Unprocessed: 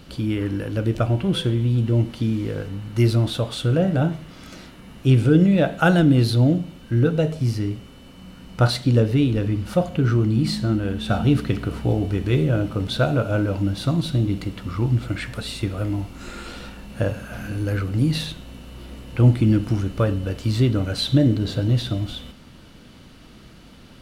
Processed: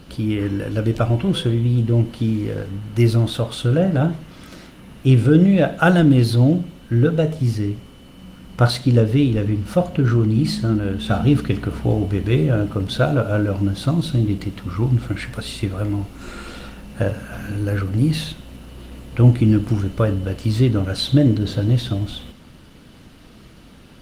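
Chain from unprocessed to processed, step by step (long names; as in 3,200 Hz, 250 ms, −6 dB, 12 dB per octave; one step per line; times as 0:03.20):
level +2.5 dB
Opus 24 kbit/s 48,000 Hz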